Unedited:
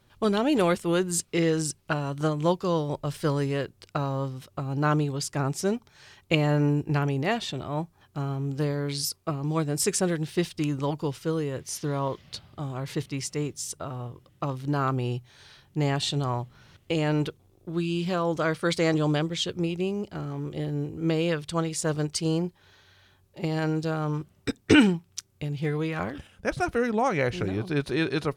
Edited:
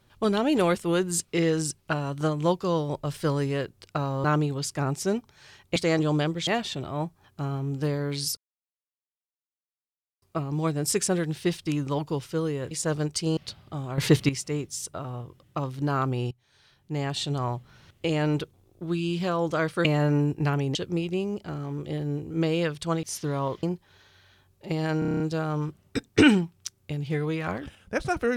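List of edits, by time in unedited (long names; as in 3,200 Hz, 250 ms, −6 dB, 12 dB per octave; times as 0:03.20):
0:04.24–0:04.82: remove
0:06.34–0:07.24: swap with 0:18.71–0:19.42
0:09.14: splice in silence 1.85 s
0:11.63–0:12.23: swap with 0:21.70–0:22.36
0:12.84–0:13.15: clip gain +11 dB
0:15.17–0:16.37: fade in, from −17.5 dB
0:23.72: stutter 0.03 s, 8 plays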